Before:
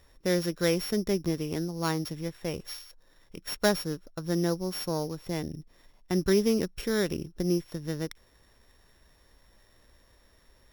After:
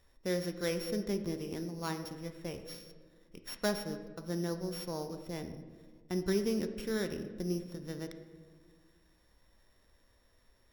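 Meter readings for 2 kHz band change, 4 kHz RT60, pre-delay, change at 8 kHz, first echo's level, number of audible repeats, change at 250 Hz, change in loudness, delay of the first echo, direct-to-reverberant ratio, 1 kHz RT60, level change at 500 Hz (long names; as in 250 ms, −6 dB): −7.5 dB, 0.90 s, 4 ms, −8.0 dB, no echo audible, no echo audible, −7.0 dB, −7.0 dB, no echo audible, 7.0 dB, 1.3 s, −7.0 dB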